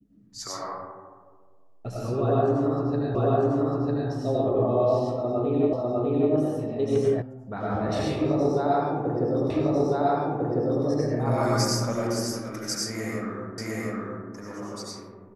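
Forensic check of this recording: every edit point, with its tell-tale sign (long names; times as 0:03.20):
0:03.15: the same again, the last 0.95 s
0:05.73: the same again, the last 0.6 s
0:07.22: cut off before it has died away
0:09.50: the same again, the last 1.35 s
0:13.58: the same again, the last 0.71 s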